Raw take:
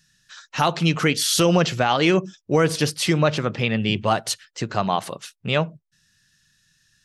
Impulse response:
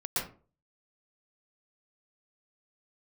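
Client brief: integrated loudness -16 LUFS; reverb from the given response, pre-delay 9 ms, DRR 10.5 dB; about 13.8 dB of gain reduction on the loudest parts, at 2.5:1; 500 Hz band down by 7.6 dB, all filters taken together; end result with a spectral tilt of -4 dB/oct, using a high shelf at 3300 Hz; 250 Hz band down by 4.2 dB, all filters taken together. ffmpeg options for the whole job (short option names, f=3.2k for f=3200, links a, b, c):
-filter_complex "[0:a]equalizer=f=250:t=o:g=-4,equalizer=f=500:t=o:g=-8.5,highshelf=f=3.3k:g=-3,acompressor=threshold=-40dB:ratio=2.5,asplit=2[a][b];[1:a]atrim=start_sample=2205,adelay=9[c];[b][c]afir=irnorm=-1:irlink=0,volume=-17dB[d];[a][d]amix=inputs=2:normalize=0,volume=21dB"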